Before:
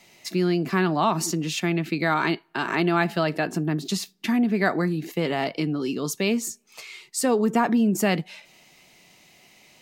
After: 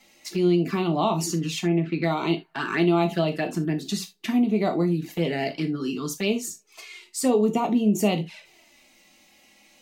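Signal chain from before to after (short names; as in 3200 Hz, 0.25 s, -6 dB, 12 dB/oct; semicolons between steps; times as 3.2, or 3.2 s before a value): 1.62–2.02 LPF 1300 Hz -> 3100 Hz 12 dB/oct; envelope flanger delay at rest 3.9 ms, full sweep at -19.5 dBFS; non-linear reverb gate 0.1 s falling, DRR 5.5 dB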